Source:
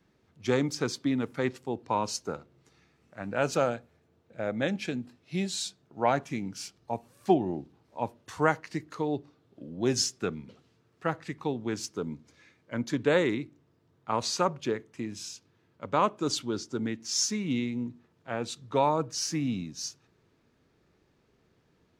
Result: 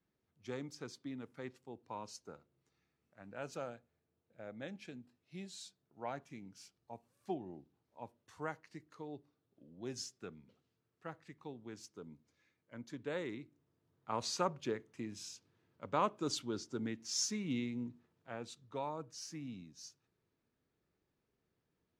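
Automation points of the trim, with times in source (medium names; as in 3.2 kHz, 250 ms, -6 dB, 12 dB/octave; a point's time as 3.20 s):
13.01 s -17 dB
14.31 s -8 dB
17.89 s -8 dB
18.81 s -16 dB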